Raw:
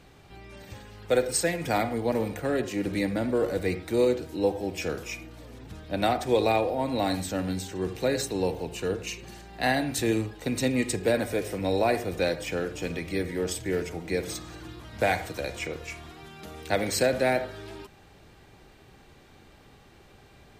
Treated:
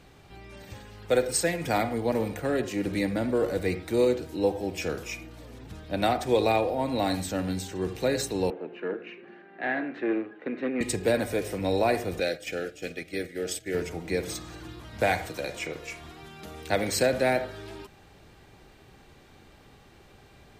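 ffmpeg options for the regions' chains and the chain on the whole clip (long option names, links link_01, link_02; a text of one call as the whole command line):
ffmpeg -i in.wav -filter_complex "[0:a]asettb=1/sr,asplit=3[link_01][link_02][link_03];[link_01]atrim=end=8.504[link_04];[link_02]atrim=start=8.5:end=10.81,asetpts=PTS-STARTPTS,afade=type=in:duration=0.004:curve=qsin,afade=type=out:start_time=2.306:duration=0.004:curve=qsin,aeval=exprs='(tanh(11.2*val(0)+0.65)-tanh(0.65))/11.2':channel_layout=same,highpass=frequency=210:width=0.5412,highpass=frequency=210:width=1.3066,equalizer=frequency=350:width_type=q:width=4:gain=5,equalizer=frequency=920:width_type=q:width=4:gain=-6,equalizer=frequency=1600:width_type=q:width=4:gain=6,lowpass=frequency=2400:width=0.5412,lowpass=frequency=2400:width=1.3066[link_05];[link_03]atrim=start=10.806[link_06];[link_04][link_05]acrossfade=duration=0.004:curve1=hsin:curve2=qsin[link_07];[link_07][link_06]acrossfade=duration=0.004:curve1=qsin:curve2=hsin,asettb=1/sr,asplit=3[link_08][link_09][link_10];[link_08]atrim=end=12.204[link_11];[link_09]atrim=start=12.2:end=13.75,asetpts=PTS-STARTPTS,afade=type=in:duration=0.004:curve=qsin,afade=type=out:start_time=1.546:duration=0.004:curve=qsin,lowshelf=frequency=220:gain=-11.5,agate=range=-8dB:threshold=-38dB:ratio=16:release=100:detection=peak,asuperstop=centerf=1000:order=4:qfactor=1.9[link_12];[link_10]atrim=start=13.746[link_13];[link_11][link_12]acrossfade=duration=0.004:curve1=hsin:curve2=qsin[link_14];[link_14][link_13]acrossfade=duration=0.004:curve1=qsin:curve2=hsin,asettb=1/sr,asplit=3[link_15][link_16][link_17];[link_15]atrim=end=15.304[link_18];[link_16]atrim=start=15.3:end=16.02,asetpts=PTS-STARTPTS,afade=type=in:duration=0.004:curve=qsin,afade=type=out:start_time=0.716:duration=0.004:curve=qsin,equalizer=frequency=67:width_type=o:width=0.98:gain=-9.5,bandreject=frequency=59.07:width_type=h:width=4,bandreject=frequency=118.14:width_type=h:width=4,bandreject=frequency=177.21:width_type=h:width=4,bandreject=frequency=236.28:width_type=h:width=4,bandreject=frequency=295.35:width_type=h:width=4,bandreject=frequency=354.42:width_type=h:width=4,bandreject=frequency=413.49:width_type=h:width=4,bandreject=frequency=472.56:width_type=h:width=4,bandreject=frequency=531.63:width_type=h:width=4,bandreject=frequency=590.7:width_type=h:width=4,bandreject=frequency=649.77:width_type=h:width=4,bandreject=frequency=708.84:width_type=h:width=4,bandreject=frequency=767.91:width_type=h:width=4,bandreject=frequency=826.98:width_type=h:width=4,bandreject=frequency=886.05:width_type=h:width=4,bandreject=frequency=945.12:width_type=h:width=4,bandreject=frequency=1004.19:width_type=h:width=4,bandreject=frequency=1063.26:width_type=h:width=4,bandreject=frequency=1122.33:width_type=h:width=4,bandreject=frequency=1181.4:width_type=h:width=4,bandreject=frequency=1240.47:width_type=h:width=4,bandreject=frequency=1299.54:width_type=h:width=4,bandreject=frequency=1358.61:width_type=h:width=4,bandreject=frequency=1417.68:width_type=h:width=4,bandreject=frequency=1476.75:width_type=h:width=4,bandreject=frequency=1535.82:width_type=h:width=4,bandreject=frequency=1594.89:width_type=h:width=4,bandreject=frequency=1653.96:width_type=h:width=4,bandreject=frequency=1713.03:width_type=h:width=4,bandreject=frequency=1772.1:width_type=h:width=4,bandreject=frequency=1831.17:width_type=h:width=4,bandreject=frequency=1890.24:width_type=h:width=4,bandreject=frequency=1949.31:width_type=h:width=4,bandreject=frequency=2008.38:width_type=h:width=4,bandreject=frequency=2067.45:width_type=h:width=4,bandreject=frequency=2126.52:width_type=h:width=4,bandreject=frequency=2185.59:width_type=h:width=4[link_19];[link_17]atrim=start=16.016[link_20];[link_18][link_19]acrossfade=duration=0.004:curve1=hsin:curve2=qsin[link_21];[link_21][link_20]acrossfade=duration=0.004:curve1=qsin:curve2=hsin" out.wav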